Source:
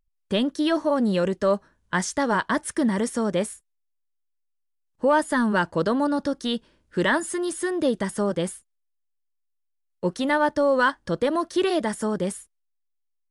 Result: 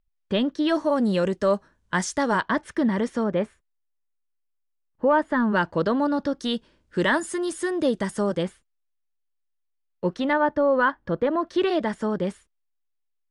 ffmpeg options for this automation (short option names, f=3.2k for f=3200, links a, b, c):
-af "asetnsamples=n=441:p=0,asendcmd='0.69 lowpass f 9900;2.41 lowpass f 3900;3.24 lowpass f 2200;5.53 lowpass f 4400;6.39 lowpass f 8900;8.43 lowpass f 3600;10.33 lowpass f 2100;11.47 lowpass f 3800',lowpass=4.1k"